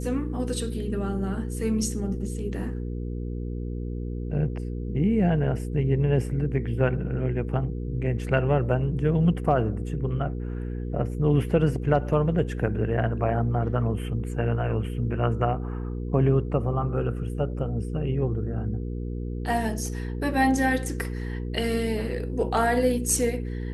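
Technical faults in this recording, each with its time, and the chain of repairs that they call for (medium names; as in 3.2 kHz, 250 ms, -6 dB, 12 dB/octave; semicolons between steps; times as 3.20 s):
hum 60 Hz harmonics 8 -31 dBFS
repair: de-hum 60 Hz, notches 8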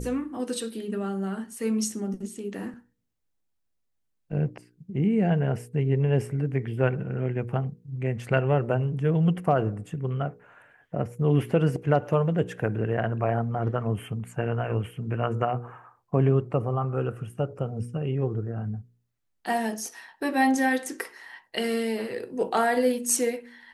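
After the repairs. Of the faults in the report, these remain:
nothing left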